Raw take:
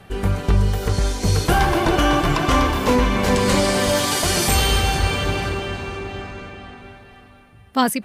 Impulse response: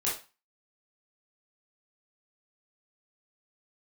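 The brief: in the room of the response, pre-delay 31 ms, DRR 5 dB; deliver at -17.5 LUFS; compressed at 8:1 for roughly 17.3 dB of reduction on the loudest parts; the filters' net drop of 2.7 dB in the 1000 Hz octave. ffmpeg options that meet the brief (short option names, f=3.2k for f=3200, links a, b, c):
-filter_complex "[0:a]equalizer=f=1k:t=o:g=-3.5,acompressor=threshold=-31dB:ratio=8,asplit=2[a][b];[1:a]atrim=start_sample=2205,adelay=31[c];[b][c]afir=irnorm=-1:irlink=0,volume=-11.5dB[d];[a][d]amix=inputs=2:normalize=0,volume=16dB"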